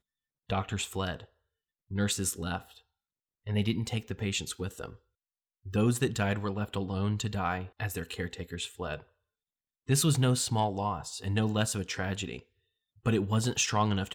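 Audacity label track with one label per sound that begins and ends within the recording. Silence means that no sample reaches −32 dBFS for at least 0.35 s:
0.500000	1.150000	sound
1.930000	2.570000	sound
3.470000	4.860000	sound
5.740000	8.960000	sound
9.890000	12.360000	sound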